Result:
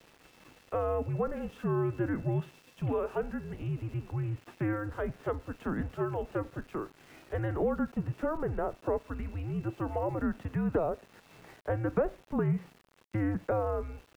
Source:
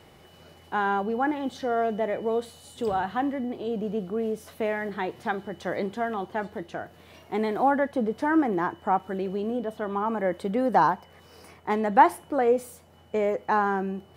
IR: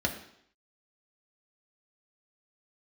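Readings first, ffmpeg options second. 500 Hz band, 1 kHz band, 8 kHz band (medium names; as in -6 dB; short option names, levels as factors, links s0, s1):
-6.0 dB, -14.5 dB, no reading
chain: -filter_complex "[0:a]highpass=f=430:t=q:w=0.5412,highpass=f=430:t=q:w=1.307,lowpass=f=3100:t=q:w=0.5176,lowpass=f=3100:t=q:w=0.7071,lowpass=f=3100:t=q:w=1.932,afreqshift=-320,acrossover=split=150|620|1800[s0][s1][s2][s3];[s0]acompressor=threshold=0.02:ratio=4[s4];[s1]acompressor=threshold=0.0316:ratio=4[s5];[s2]acompressor=threshold=0.0112:ratio=4[s6];[s3]acompressor=threshold=0.00158:ratio=4[s7];[s4][s5][s6][s7]amix=inputs=4:normalize=0,aeval=exprs='val(0)*gte(abs(val(0)),0.00224)':c=same"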